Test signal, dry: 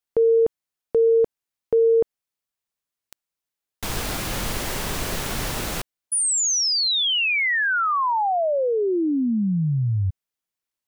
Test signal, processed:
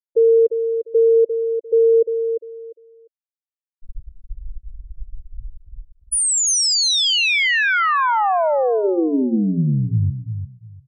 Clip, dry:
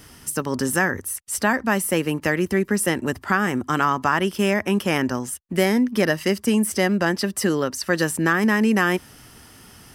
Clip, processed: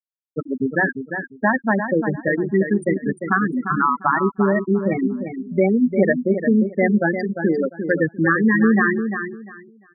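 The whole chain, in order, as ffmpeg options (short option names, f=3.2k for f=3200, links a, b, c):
-filter_complex "[0:a]acrusher=bits=3:mode=log:mix=0:aa=0.000001,bandreject=f=60:t=h:w=6,bandreject=f=120:t=h:w=6,bandreject=f=180:t=h:w=6,bandreject=f=240:t=h:w=6,bandreject=f=300:t=h:w=6,bandreject=f=360:t=h:w=6,bandreject=f=420:t=h:w=6,afftfilt=real='re*gte(hypot(re,im),0.355)':imag='im*gte(hypot(re,im),0.355)':win_size=1024:overlap=0.75,asplit=2[a][b];[b]aecho=0:1:349|698|1047:0.398|0.0836|0.0176[c];[a][c]amix=inputs=2:normalize=0,volume=3.5dB"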